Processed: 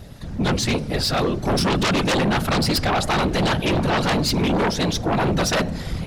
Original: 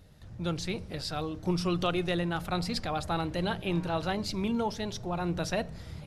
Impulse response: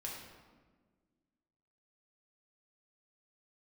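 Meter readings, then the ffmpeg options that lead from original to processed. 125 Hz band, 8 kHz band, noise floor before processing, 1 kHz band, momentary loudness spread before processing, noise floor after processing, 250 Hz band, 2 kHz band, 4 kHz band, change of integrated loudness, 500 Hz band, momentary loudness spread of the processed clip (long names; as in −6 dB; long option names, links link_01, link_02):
+11.0 dB, +15.5 dB, −47 dBFS, +11.5 dB, 6 LU, −31 dBFS, +10.0 dB, +13.5 dB, +13.0 dB, +11.0 dB, +10.5 dB, 3 LU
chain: -af "afftfilt=real='hypot(re,im)*cos(2*PI*random(0))':imag='hypot(re,im)*sin(2*PI*random(1))':win_size=512:overlap=0.75,aeval=exprs='0.0708*sin(PI/2*3.55*val(0)/0.0708)':channel_layout=same,volume=7dB"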